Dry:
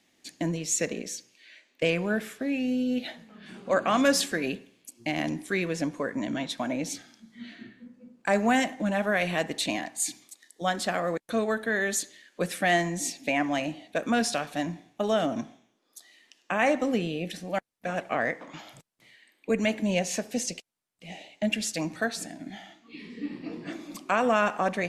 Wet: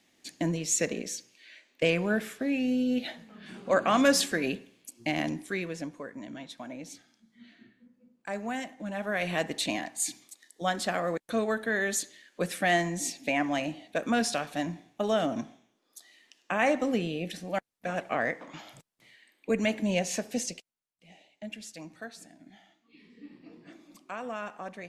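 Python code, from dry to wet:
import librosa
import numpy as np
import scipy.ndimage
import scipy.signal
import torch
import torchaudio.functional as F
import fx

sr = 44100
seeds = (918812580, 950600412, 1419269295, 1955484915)

y = fx.gain(x, sr, db=fx.line((5.14, 0.0), (6.13, -11.0), (8.74, -11.0), (9.36, -1.5), (20.39, -1.5), (21.09, -13.5)))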